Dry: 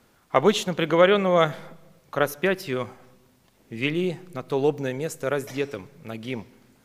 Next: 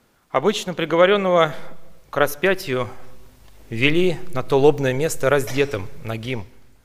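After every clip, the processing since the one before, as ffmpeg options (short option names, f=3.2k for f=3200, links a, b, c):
-af "asubboost=boost=11.5:cutoff=56,dynaudnorm=f=130:g=11:m=11.5dB"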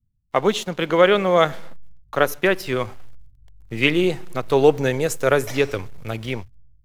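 -filter_complex "[0:a]acrossover=split=130[a][b];[a]alimiter=level_in=4.5dB:limit=-24dB:level=0:latency=1,volume=-4.5dB[c];[b]aeval=exprs='sgn(val(0))*max(abs(val(0))-0.00562,0)':c=same[d];[c][d]amix=inputs=2:normalize=0"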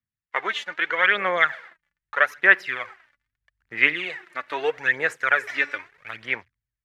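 -af "aphaser=in_gain=1:out_gain=1:delay=3.5:decay=0.58:speed=0.79:type=sinusoidal,bandpass=f=1.8k:t=q:w=3.7:csg=0,volume=7.5dB"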